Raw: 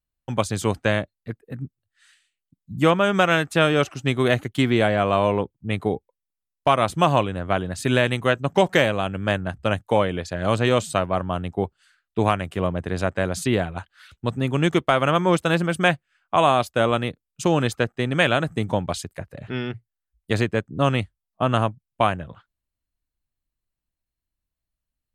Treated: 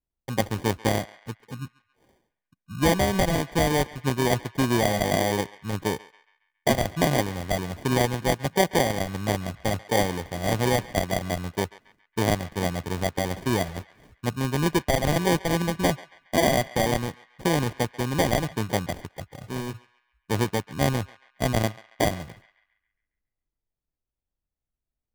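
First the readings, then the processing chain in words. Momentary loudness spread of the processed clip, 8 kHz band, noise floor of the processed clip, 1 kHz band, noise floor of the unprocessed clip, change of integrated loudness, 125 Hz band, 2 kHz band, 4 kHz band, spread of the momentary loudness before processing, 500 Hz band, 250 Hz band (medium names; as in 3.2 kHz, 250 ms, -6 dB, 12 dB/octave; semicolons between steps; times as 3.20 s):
12 LU, +4.5 dB, under -85 dBFS, -4.5 dB, -85 dBFS, -3.5 dB, -2.5 dB, -5.0 dB, -2.0 dB, 12 LU, -4.0 dB, -2.5 dB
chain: treble shelf 4.1 kHz -9.5 dB; sample-and-hold 33×; band-passed feedback delay 138 ms, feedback 49%, band-pass 1.9 kHz, level -16 dB; trim -3 dB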